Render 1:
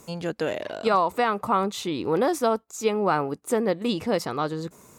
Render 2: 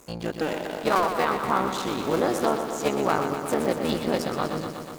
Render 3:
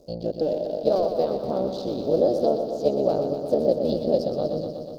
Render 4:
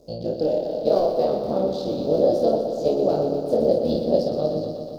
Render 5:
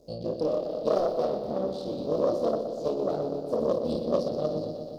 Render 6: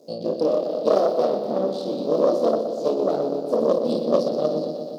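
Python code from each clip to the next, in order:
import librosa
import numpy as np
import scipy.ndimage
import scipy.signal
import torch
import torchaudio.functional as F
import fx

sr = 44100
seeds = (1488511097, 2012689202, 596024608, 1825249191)

y1 = fx.cycle_switch(x, sr, every=3, mode='muted')
y1 = fx.echo_crushed(y1, sr, ms=122, feedback_pct=80, bits=8, wet_db=-8)
y2 = fx.curve_eq(y1, sr, hz=(380.0, 600.0, 1000.0, 2100.0, 4700.0, 7400.0, 15000.0), db=(0, 9, -20, -28, 1, -22, -15))
y3 = fx.room_early_taps(y2, sr, ms=(26, 54), db=(-4.0, -6.0))
y4 = fx.self_delay(y3, sr, depth_ms=0.16)
y4 = fx.rider(y4, sr, range_db=4, speed_s=2.0)
y4 = y4 * librosa.db_to_amplitude(-7.0)
y5 = scipy.signal.sosfilt(scipy.signal.butter(4, 180.0, 'highpass', fs=sr, output='sos'), y4)
y5 = y5 * librosa.db_to_amplitude(6.5)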